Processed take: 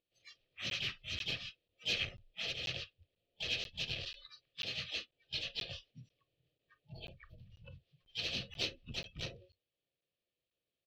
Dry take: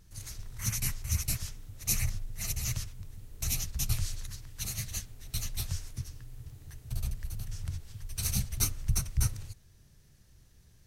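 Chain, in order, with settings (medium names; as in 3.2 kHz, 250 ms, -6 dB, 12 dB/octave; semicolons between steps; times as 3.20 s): vowel filter e; reverberation RT60 0.20 s, pre-delay 3 ms, DRR 12 dB; harmony voices -7 st -7 dB, -3 st -11 dB, +4 st -5 dB; resonant high shelf 6.4 kHz -13.5 dB, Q 3; spectral noise reduction 25 dB; FFT filter 560 Hz 0 dB, 1.8 kHz -9 dB, 3 kHz +6 dB, 4.8 kHz -1 dB; crackling interface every 0.49 s, samples 512, zero, from 0.70 s; transformer saturation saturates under 650 Hz; trim +13 dB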